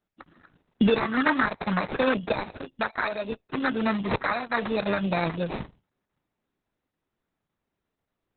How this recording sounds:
aliases and images of a low sample rate 3,100 Hz, jitter 0%
Opus

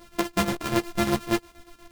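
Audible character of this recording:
a buzz of ramps at a fixed pitch in blocks of 128 samples
chopped level 8.4 Hz, depth 65%, duty 65%
a shimmering, thickened sound

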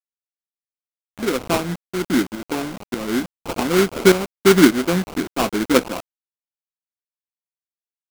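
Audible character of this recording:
aliases and images of a low sample rate 1,800 Hz, jitter 20%
tremolo saw up 1.7 Hz, depth 75%
a quantiser's noise floor 6 bits, dither none

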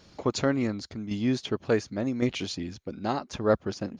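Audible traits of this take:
tremolo saw down 0.9 Hz, depth 55%

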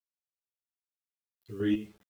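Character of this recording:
chopped level 2.5 Hz, depth 60%, duty 35%
a quantiser's noise floor 10 bits, dither none
a shimmering, thickened sound

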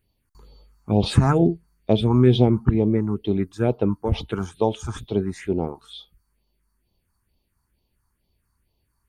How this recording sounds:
phaser sweep stages 4, 2.2 Hz, lowest notch 510–1,500 Hz

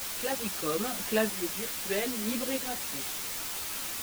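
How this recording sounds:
tremolo saw up 0.78 Hz, depth 65%
a quantiser's noise floor 6 bits, dither triangular
a shimmering, thickened sound

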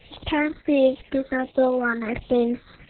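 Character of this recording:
a quantiser's noise floor 8 bits, dither triangular
phaser sweep stages 6, 1.4 Hz, lowest notch 740–1,800 Hz
Opus

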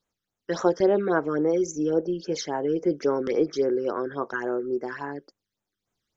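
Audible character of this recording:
phaser sweep stages 12, 3.6 Hz, lowest notch 720–4,800 Hz

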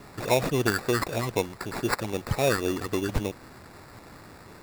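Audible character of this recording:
a quantiser's noise floor 8 bits, dither triangular
phaser sweep stages 8, 3.8 Hz, lowest notch 550–2,900 Hz
aliases and images of a low sample rate 3,100 Hz, jitter 0%

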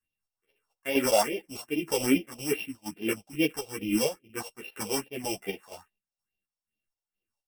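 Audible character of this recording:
a buzz of ramps at a fixed pitch in blocks of 16 samples
phaser sweep stages 4, 2.4 Hz, lowest notch 280–1,300 Hz
chopped level 2.1 Hz, depth 60%, duty 55%
a shimmering, thickened sound

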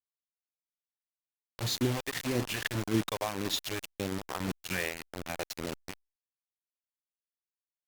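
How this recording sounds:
phaser sweep stages 2, 1.8 Hz, lowest notch 220–1,200 Hz
tremolo saw down 1.7 Hz, depth 45%
a quantiser's noise floor 6 bits, dither none
Opus

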